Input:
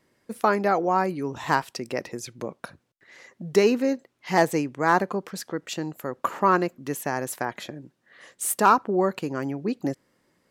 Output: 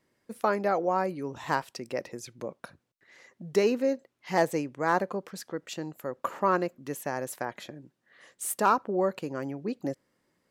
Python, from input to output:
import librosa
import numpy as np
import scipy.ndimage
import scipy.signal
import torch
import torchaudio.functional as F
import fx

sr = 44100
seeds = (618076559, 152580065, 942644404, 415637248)

y = fx.dynamic_eq(x, sr, hz=550.0, q=3.9, threshold_db=-41.0, ratio=4.0, max_db=6)
y = y * librosa.db_to_amplitude(-6.0)